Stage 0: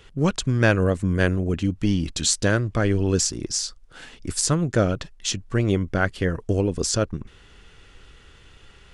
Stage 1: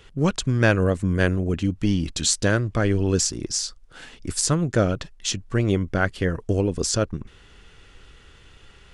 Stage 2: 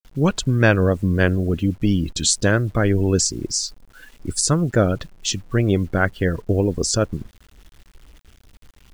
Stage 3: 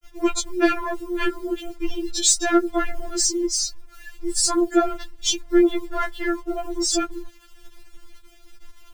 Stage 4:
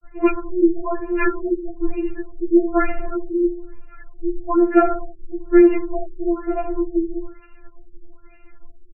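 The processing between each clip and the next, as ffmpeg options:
-af anull
-af "afftdn=nr=15:nf=-36,acrusher=bits=8:mix=0:aa=0.000001,volume=3dB"
-filter_complex "[0:a]asplit=2[a][b];[b]asoftclip=type=tanh:threshold=-18.5dB,volume=-4dB[c];[a][c]amix=inputs=2:normalize=0,afftfilt=real='re*4*eq(mod(b,16),0)':imag='im*4*eq(mod(b,16),0)':win_size=2048:overlap=0.75"
-af "aecho=1:1:66|132|198|264|330:0.2|0.104|0.054|0.0281|0.0146,afftfilt=real='re*lt(b*sr/1024,580*pow(3000/580,0.5+0.5*sin(2*PI*1.1*pts/sr)))':imag='im*lt(b*sr/1024,580*pow(3000/580,0.5+0.5*sin(2*PI*1.1*pts/sr)))':win_size=1024:overlap=0.75,volume=4.5dB"

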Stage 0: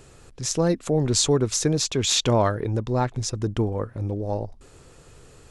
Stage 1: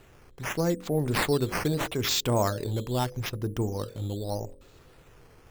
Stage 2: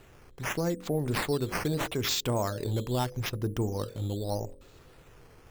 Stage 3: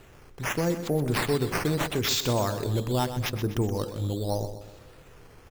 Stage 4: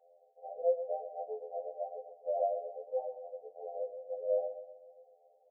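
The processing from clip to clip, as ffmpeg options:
-af "bandreject=f=45.53:t=h:w=4,bandreject=f=91.06:t=h:w=4,bandreject=f=136.59:t=h:w=4,bandreject=f=182.12:t=h:w=4,bandreject=f=227.65:t=h:w=4,bandreject=f=273.18:t=h:w=4,bandreject=f=318.71:t=h:w=4,bandreject=f=364.24:t=h:w=4,bandreject=f=409.77:t=h:w=4,bandreject=f=455.3:t=h:w=4,bandreject=f=500.83:t=h:w=4,bandreject=f=546.36:t=h:w=4,bandreject=f=591.89:t=h:w=4,acrusher=samples=8:mix=1:aa=0.000001:lfo=1:lforange=8:lforate=0.8,volume=-4.5dB"
-af "alimiter=limit=-20dB:level=0:latency=1:release=211"
-af "aecho=1:1:125|250|375|500|625:0.282|0.127|0.0571|0.0257|0.0116,volume=3dB"
-af "asuperpass=centerf=600:order=20:qfactor=1.8,afftfilt=real='re*2*eq(mod(b,4),0)':imag='im*2*eq(mod(b,4),0)':win_size=2048:overlap=0.75"

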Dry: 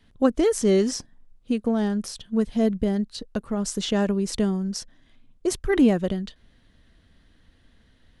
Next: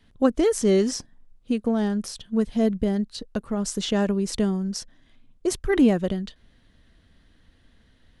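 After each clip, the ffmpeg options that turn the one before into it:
-af anull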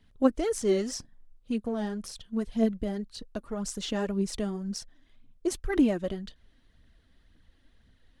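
-af "aphaser=in_gain=1:out_gain=1:delay=3.8:decay=0.47:speed=1.9:type=triangular,volume=-7dB"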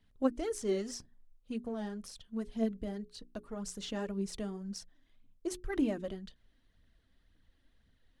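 -af "bandreject=f=60:t=h:w=6,bandreject=f=120:t=h:w=6,bandreject=f=180:t=h:w=6,bandreject=f=240:t=h:w=6,bandreject=f=300:t=h:w=6,bandreject=f=360:t=h:w=6,bandreject=f=420:t=h:w=6,volume=-7dB"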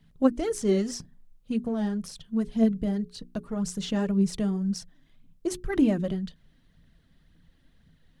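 -af "equalizer=f=160:t=o:w=0.64:g=13.5,volume=6.5dB"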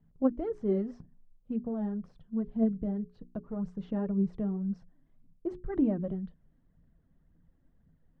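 -af "lowpass=1k,volume=-5dB"

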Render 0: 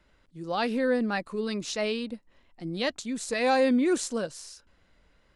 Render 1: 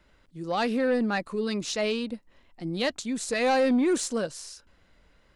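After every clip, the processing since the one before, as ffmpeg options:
-af "asoftclip=type=tanh:threshold=-19.5dB,volume=2.5dB"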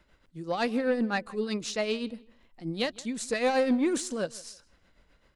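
-filter_complex "[0:a]tremolo=f=7.8:d=0.56,asplit=2[a][b];[b]adelay=160,lowpass=f=4.6k:p=1,volume=-22dB,asplit=2[c][d];[d]adelay=160,lowpass=f=4.6k:p=1,volume=0.25[e];[a][c][e]amix=inputs=3:normalize=0"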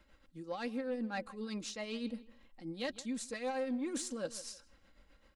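-af "areverse,acompressor=threshold=-35dB:ratio=6,areverse,aecho=1:1:3.7:0.49,volume=-3dB"

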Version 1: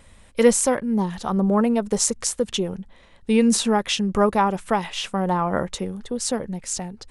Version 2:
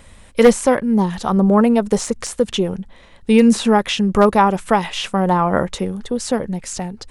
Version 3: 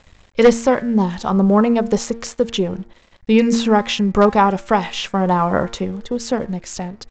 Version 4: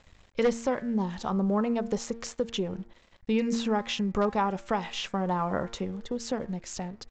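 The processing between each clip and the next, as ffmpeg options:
-filter_complex "[0:a]aeval=exprs='0.422*(abs(mod(val(0)/0.422+3,4)-2)-1)':c=same,acrossover=split=3100[a][b];[b]acompressor=threshold=-31dB:ratio=4:attack=1:release=60[c];[a][c]amix=inputs=2:normalize=0,volume=6dB"
-af "bandreject=f=115.6:t=h:w=4,bandreject=f=231.2:t=h:w=4,bandreject=f=346.8:t=h:w=4,bandreject=f=462.4:t=h:w=4,bandreject=f=578:t=h:w=4,bandreject=f=693.6:t=h:w=4,bandreject=f=809.2:t=h:w=4,bandreject=f=924.8:t=h:w=4,bandreject=f=1.0404k:t=h:w=4,bandreject=f=1.156k:t=h:w=4,bandreject=f=1.2716k:t=h:w=4,bandreject=f=1.3872k:t=h:w=4,bandreject=f=1.5028k:t=h:w=4,bandreject=f=1.6184k:t=h:w=4,bandreject=f=1.734k:t=h:w=4,bandreject=f=1.8496k:t=h:w=4,bandreject=f=1.9652k:t=h:w=4,bandreject=f=2.0808k:t=h:w=4,bandreject=f=2.1964k:t=h:w=4,bandreject=f=2.312k:t=h:w=4,bandreject=f=2.4276k:t=h:w=4,aresample=16000,aeval=exprs='sgn(val(0))*max(abs(val(0))-0.00447,0)':c=same,aresample=44100"
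-af "acompressor=threshold=-23dB:ratio=1.5,volume=-8dB"

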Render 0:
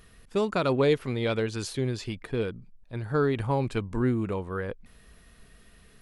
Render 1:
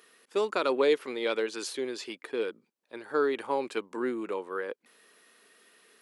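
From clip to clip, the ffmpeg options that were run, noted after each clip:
-af "highpass=f=320:w=0.5412,highpass=f=320:w=1.3066,equalizer=f=680:t=o:w=0.26:g=-5.5"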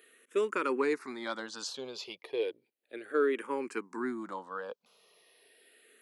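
-filter_complex "[0:a]asplit=2[a][b];[b]afreqshift=-0.34[c];[a][c]amix=inputs=2:normalize=1"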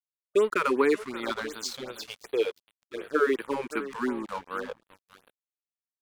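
-af "aecho=1:1:579|1158:0.224|0.0381,aeval=exprs='sgn(val(0))*max(abs(val(0))-0.00422,0)':c=same,afftfilt=real='re*(1-between(b*sr/1024,270*pow(6700/270,0.5+0.5*sin(2*PI*2.7*pts/sr))/1.41,270*pow(6700/270,0.5+0.5*sin(2*PI*2.7*pts/sr))*1.41))':imag='im*(1-between(b*sr/1024,270*pow(6700/270,0.5+0.5*sin(2*PI*2.7*pts/sr))/1.41,270*pow(6700/270,0.5+0.5*sin(2*PI*2.7*pts/sr))*1.41))':win_size=1024:overlap=0.75,volume=7.5dB"

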